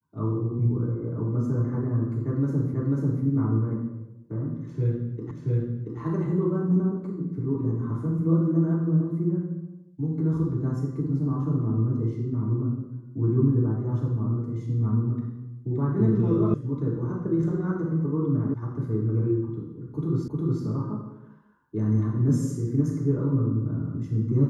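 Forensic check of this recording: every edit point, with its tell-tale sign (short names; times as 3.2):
2.74 repeat of the last 0.49 s
5.31 repeat of the last 0.68 s
16.54 sound cut off
18.54 sound cut off
20.28 repeat of the last 0.36 s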